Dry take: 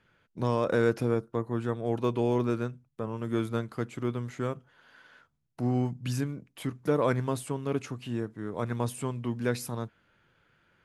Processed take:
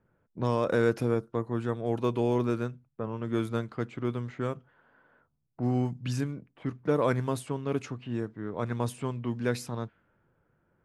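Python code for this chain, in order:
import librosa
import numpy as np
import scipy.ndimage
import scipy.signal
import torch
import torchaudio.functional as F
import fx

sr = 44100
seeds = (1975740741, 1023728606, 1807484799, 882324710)

y = fx.env_lowpass(x, sr, base_hz=840.0, full_db=-25.0)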